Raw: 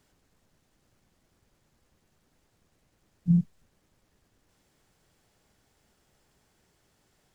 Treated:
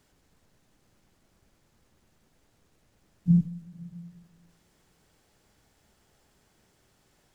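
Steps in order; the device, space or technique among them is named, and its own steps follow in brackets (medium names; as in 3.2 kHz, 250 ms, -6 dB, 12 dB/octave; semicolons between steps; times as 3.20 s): compressed reverb return (on a send at -6 dB: reverberation RT60 1.3 s, pre-delay 115 ms + compression, threshold -34 dBFS, peak gain reduction 16.5 dB); on the sum: trim +1.5 dB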